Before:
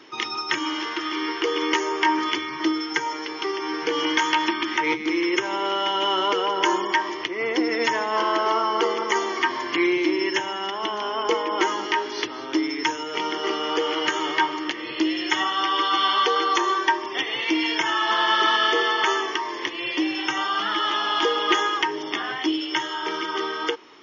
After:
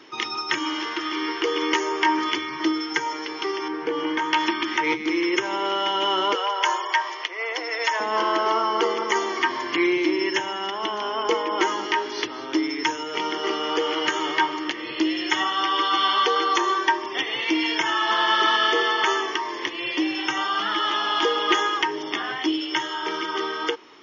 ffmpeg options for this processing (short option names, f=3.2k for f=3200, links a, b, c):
-filter_complex "[0:a]asettb=1/sr,asplit=3[a][b][c];[a]atrim=end=3.684[d];[b]atrim=start=3.68:end=4.33,asetpts=PTS-STARTPTS,afade=t=in:d=0.004:c=qsin,afade=t=out:st=0.646:d=0.004:c=qsin,lowpass=f=1.2k:p=1[e];[c]atrim=start=4.326[f];[d][e]acrossfade=d=0.004:c1=hsin:c2=qsin[g];[g][f]acrossfade=d=0.004:c1=qsin:c2=hsin,asettb=1/sr,asplit=3[h][i][j];[h]atrim=end=6.354[k];[i]atrim=start=6.35:end=8,asetpts=PTS-STARTPTS,afade=t=in:d=0.004:c=qsin,afade=t=out:st=1.646:d=0.004:c=qsin,highpass=f=540:w=0.5412,highpass=f=540:w=1.3066[l];[j]atrim=start=7.996[m];[k][l]acrossfade=d=0.004:c1=hsin:c2=qsin[n];[n][m]acrossfade=d=0.004:c1=qsin:c2=hsin"